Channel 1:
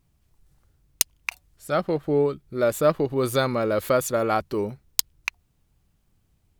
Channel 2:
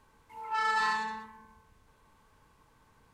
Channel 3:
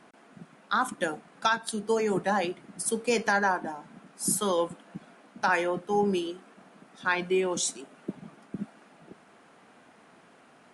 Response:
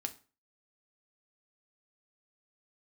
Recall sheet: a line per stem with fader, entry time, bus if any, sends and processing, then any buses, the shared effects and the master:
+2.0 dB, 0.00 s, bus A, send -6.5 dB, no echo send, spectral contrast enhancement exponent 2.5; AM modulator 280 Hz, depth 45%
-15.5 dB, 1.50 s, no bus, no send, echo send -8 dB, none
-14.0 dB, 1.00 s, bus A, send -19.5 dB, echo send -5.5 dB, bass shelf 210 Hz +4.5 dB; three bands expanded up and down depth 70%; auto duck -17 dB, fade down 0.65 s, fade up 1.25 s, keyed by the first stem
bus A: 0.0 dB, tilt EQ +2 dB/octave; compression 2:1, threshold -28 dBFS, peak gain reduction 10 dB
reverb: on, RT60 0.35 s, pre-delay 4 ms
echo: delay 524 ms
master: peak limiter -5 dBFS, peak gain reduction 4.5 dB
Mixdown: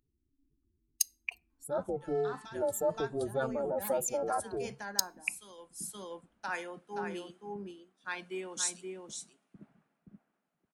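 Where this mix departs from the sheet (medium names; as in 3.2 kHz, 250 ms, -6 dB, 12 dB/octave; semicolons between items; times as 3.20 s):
stem 1 +2.0 dB -> -6.5 dB; stem 2 -15.5 dB -> -25.5 dB; reverb return -6.5 dB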